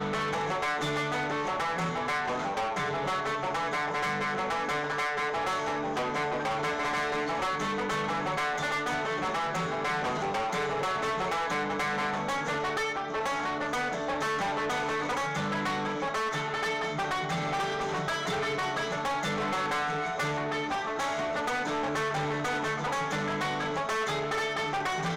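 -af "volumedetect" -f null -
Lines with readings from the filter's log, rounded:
mean_volume: -30.4 dB
max_volume: -24.1 dB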